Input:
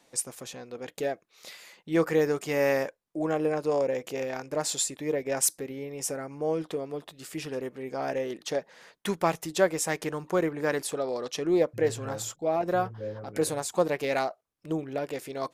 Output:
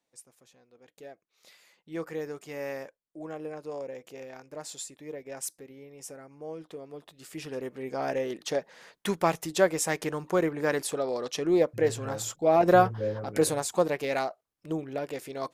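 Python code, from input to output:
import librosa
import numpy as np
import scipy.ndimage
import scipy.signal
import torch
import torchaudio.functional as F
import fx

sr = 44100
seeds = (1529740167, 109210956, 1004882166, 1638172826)

y = fx.gain(x, sr, db=fx.line((0.73, -19.5), (1.53, -11.0), (6.6, -11.0), (7.84, 0.5), (12.24, 0.5), (12.69, 8.0), (14.04, -1.5)))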